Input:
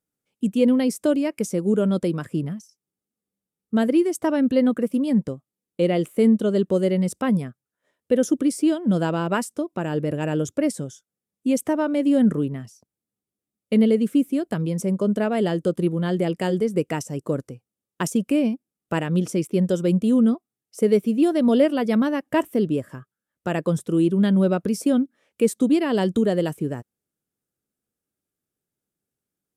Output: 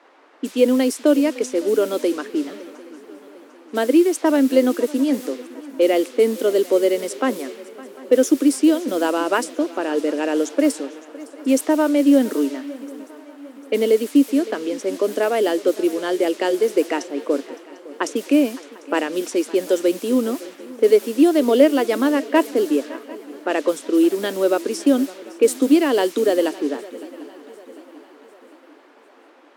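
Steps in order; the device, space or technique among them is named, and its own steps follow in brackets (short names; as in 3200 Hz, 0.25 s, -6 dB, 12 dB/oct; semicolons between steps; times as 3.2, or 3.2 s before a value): cassette deck with a dynamic noise filter (white noise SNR 22 dB; low-pass opened by the level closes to 1000 Hz, open at -17 dBFS); Chebyshev high-pass 270 Hz, order 5; swung echo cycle 0.748 s, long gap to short 3:1, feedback 46%, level -19.5 dB; gain +5.5 dB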